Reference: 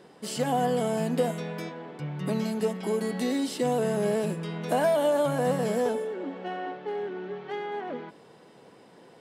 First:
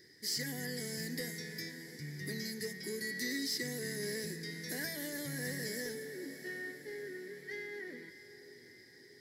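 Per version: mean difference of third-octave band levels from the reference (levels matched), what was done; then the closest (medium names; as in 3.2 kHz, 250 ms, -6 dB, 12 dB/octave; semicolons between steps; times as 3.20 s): 10.5 dB: FFT filter 110 Hz 0 dB, 190 Hz -15 dB, 360 Hz -6 dB, 670 Hz -28 dB, 1.3 kHz -25 dB, 1.9 kHz +9 dB, 2.7 kHz -19 dB, 5 kHz +10 dB, 8.7 kHz -4 dB, 12 kHz +8 dB; echo that smears into a reverb 620 ms, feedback 56%, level -13.5 dB; saturation -24.5 dBFS, distortion -25 dB; trim -1.5 dB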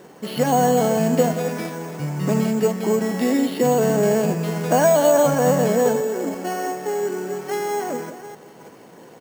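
4.5 dB: chunks repeated in reverse 334 ms, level -12 dB; on a send: delay 177 ms -15 dB; on the sum: careless resampling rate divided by 6×, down filtered, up hold; trim +8 dB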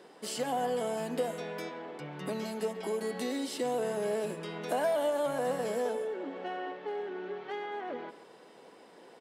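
3.5 dB: high-pass 280 Hz 12 dB/octave; in parallel at +2 dB: compression, threshold -36 dBFS, peak gain reduction 14.5 dB; on the sum: speakerphone echo 140 ms, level -12 dB; trim -7.5 dB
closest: third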